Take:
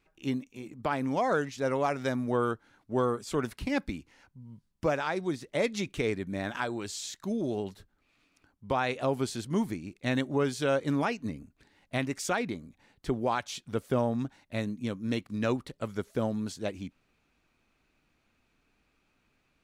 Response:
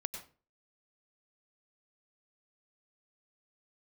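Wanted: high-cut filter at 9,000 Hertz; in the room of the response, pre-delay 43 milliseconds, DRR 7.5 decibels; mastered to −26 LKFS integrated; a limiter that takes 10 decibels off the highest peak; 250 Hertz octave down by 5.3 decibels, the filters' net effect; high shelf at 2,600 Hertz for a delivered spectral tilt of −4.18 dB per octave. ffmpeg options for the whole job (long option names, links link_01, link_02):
-filter_complex "[0:a]lowpass=9000,equalizer=frequency=250:width_type=o:gain=-6.5,highshelf=frequency=2600:gain=5.5,alimiter=level_in=0.5dB:limit=-24dB:level=0:latency=1,volume=-0.5dB,asplit=2[link_01][link_02];[1:a]atrim=start_sample=2205,adelay=43[link_03];[link_02][link_03]afir=irnorm=-1:irlink=0,volume=-7.5dB[link_04];[link_01][link_04]amix=inputs=2:normalize=0,volume=10dB"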